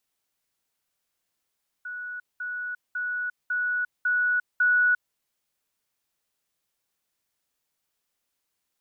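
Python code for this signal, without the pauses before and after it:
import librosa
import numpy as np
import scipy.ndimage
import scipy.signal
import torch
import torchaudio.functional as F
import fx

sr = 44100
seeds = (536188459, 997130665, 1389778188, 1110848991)

y = fx.level_ladder(sr, hz=1470.0, from_db=-32.5, step_db=3.0, steps=6, dwell_s=0.35, gap_s=0.2)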